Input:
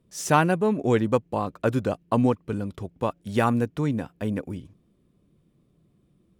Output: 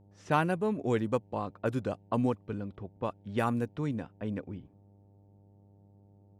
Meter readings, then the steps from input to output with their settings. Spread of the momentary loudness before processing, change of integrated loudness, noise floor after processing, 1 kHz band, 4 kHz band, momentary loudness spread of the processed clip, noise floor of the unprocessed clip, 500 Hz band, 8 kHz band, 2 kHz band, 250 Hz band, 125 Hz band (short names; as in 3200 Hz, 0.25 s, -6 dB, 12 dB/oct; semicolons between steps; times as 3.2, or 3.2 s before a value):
10 LU, -7.5 dB, -60 dBFS, -7.5 dB, -9.0 dB, 10 LU, -66 dBFS, -7.5 dB, under -15 dB, -7.5 dB, -7.5 dB, -7.5 dB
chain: low-pass opened by the level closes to 1200 Hz, open at -18.5 dBFS; buzz 100 Hz, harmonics 9, -52 dBFS -7 dB/oct; gain -7.5 dB